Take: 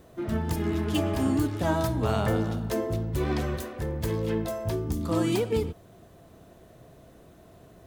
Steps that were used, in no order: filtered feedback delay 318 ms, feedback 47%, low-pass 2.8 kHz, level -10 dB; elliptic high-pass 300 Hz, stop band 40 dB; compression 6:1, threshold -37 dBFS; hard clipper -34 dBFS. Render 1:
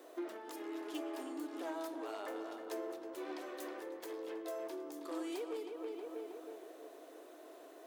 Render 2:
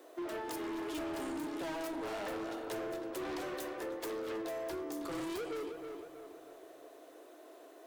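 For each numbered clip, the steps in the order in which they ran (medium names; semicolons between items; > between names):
filtered feedback delay > compression > hard clipper > elliptic high-pass; elliptic high-pass > hard clipper > filtered feedback delay > compression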